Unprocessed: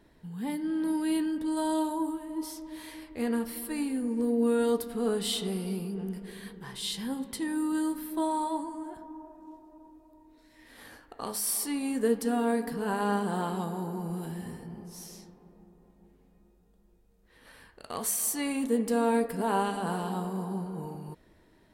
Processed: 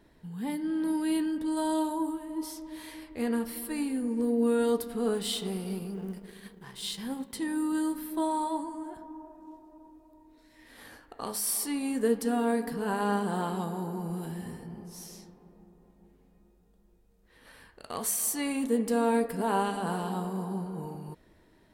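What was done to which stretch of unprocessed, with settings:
0:05.14–0:07.36: mu-law and A-law mismatch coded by A

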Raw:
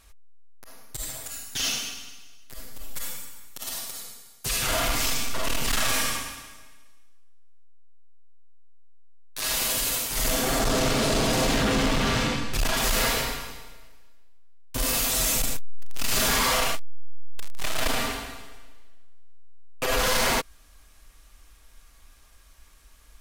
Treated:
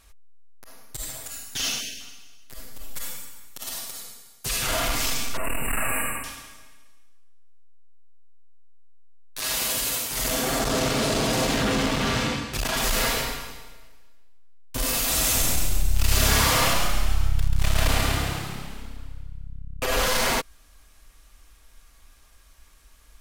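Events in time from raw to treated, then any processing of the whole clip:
0:01.80–0:02.00: time-frequency box erased 720–1,500 Hz
0:05.37–0:06.24: linear-phase brick-wall band-stop 2,900–7,400 Hz
0:09.40–0:12.76: high-pass filter 43 Hz
0:14.94–0:20.05: echo with shifted repeats 136 ms, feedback 59%, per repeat +34 Hz, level −3.5 dB

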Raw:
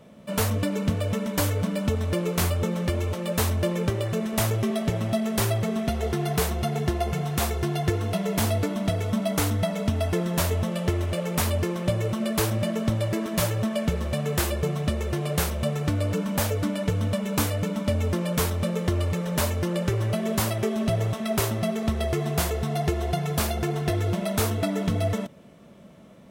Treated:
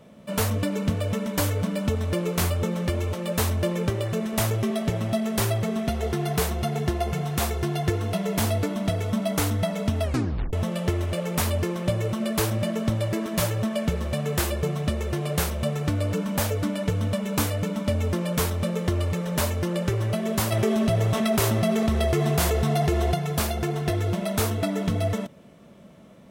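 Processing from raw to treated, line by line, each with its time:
0:10.03: tape stop 0.50 s
0:20.52–0:23.14: envelope flattener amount 70%

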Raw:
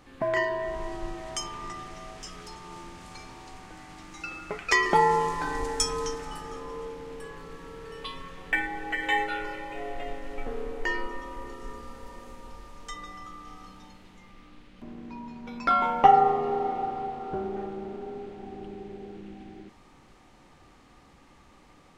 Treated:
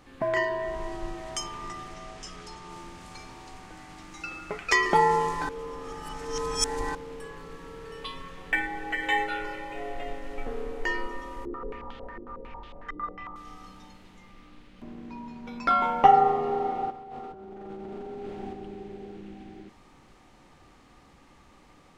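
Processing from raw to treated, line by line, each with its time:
0:01.94–0:02.69: low-pass filter 9,700 Hz
0:05.49–0:06.95: reverse
0:11.45–0:13.36: low-pass on a step sequencer 11 Hz 350–3,300 Hz
0:16.90–0:18.53: compressor whose output falls as the input rises −40 dBFS

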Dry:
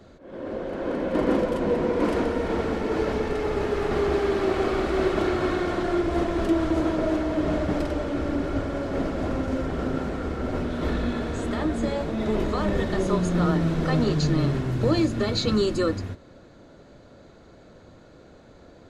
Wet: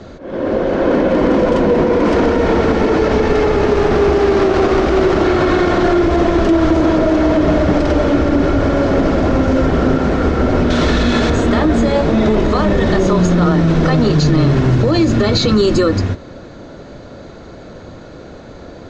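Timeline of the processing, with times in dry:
0:03.67–0:05.24: windowed peak hold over 9 samples
0:10.70–0:11.30: high-shelf EQ 2,500 Hz +11.5 dB
whole clip: Chebyshev low-pass filter 6,400 Hz, order 3; boost into a limiter +19.5 dB; level −4 dB

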